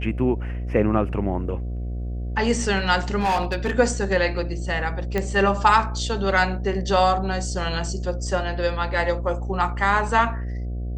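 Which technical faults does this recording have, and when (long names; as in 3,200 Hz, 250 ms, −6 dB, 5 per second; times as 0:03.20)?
mains buzz 60 Hz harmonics 12 −28 dBFS
0:03.19–0:03.73: clipping −18 dBFS
0:05.18: click −11 dBFS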